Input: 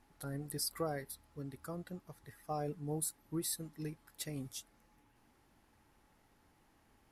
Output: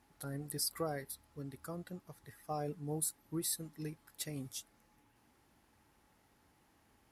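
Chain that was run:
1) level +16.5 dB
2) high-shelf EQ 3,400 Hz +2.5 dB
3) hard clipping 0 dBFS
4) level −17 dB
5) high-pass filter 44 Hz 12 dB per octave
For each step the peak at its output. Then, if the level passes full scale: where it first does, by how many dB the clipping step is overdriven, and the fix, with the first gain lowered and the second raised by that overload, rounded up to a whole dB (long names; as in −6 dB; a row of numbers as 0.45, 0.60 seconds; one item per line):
−6.0, −4.0, −4.0, −21.0, −21.0 dBFS
no step passes full scale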